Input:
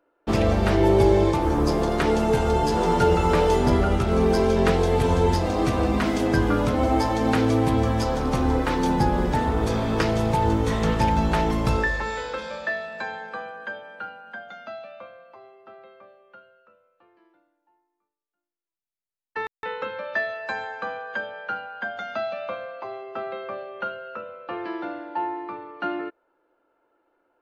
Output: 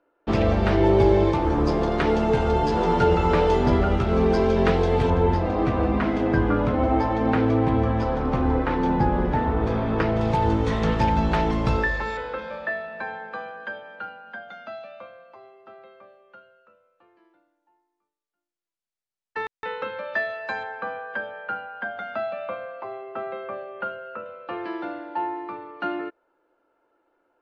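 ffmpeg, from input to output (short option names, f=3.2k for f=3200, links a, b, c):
-af "asetnsamples=n=441:p=0,asendcmd='5.1 lowpass f 2300;10.21 lowpass f 4600;12.17 lowpass f 2400;13.33 lowpass f 4900;14.73 lowpass f 8600;19.8 lowpass f 5100;20.63 lowpass f 2600;24.26 lowpass f 6500',lowpass=4.1k"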